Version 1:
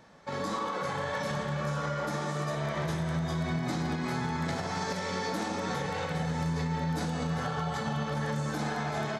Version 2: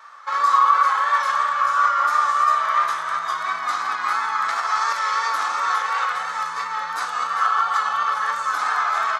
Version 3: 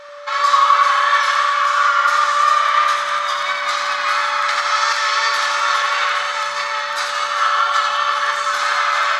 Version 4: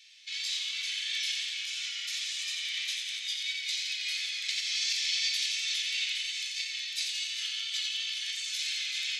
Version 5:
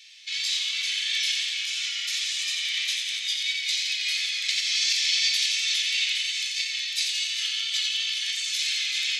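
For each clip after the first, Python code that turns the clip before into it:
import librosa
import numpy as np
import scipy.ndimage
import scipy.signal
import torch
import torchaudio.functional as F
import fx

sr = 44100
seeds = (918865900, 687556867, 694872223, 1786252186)

y1 = fx.vibrato(x, sr, rate_hz=2.9, depth_cents=39.0)
y1 = fx.highpass_res(y1, sr, hz=1200.0, q=8.3)
y1 = F.gain(torch.from_numpy(y1), 6.5).numpy()
y2 = fx.weighting(y1, sr, curve='D')
y2 = y2 + 10.0 ** (-38.0 / 20.0) * np.sin(2.0 * np.pi * 580.0 * np.arange(len(y2)) / sr)
y2 = fx.echo_feedback(y2, sr, ms=88, feedback_pct=60, wet_db=-6.5)
y3 = scipy.signal.sosfilt(scipy.signal.butter(8, 2400.0, 'highpass', fs=sr, output='sos'), y2)
y3 = F.gain(torch.from_numpy(y3), -5.5).numpy()
y4 = fx.notch(y3, sr, hz=1500.0, q=25.0)
y4 = F.gain(torch.from_numpy(y4), 6.5).numpy()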